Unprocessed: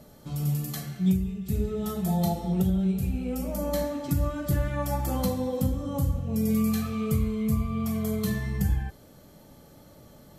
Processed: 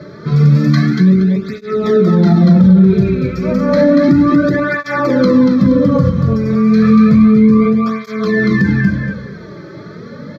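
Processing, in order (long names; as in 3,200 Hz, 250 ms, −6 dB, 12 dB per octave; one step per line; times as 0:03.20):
high-pass filter 240 Hz 12 dB per octave
high-shelf EQ 8,300 Hz −11 dB
gain into a clipping stage and back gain 24.5 dB
high-frequency loss of the air 260 metres
phaser with its sweep stopped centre 2,900 Hz, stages 6
repeating echo 236 ms, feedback 25%, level −5 dB
boost into a limiter +30.5 dB
through-zero flanger with one copy inverted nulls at 0.31 Hz, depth 4.3 ms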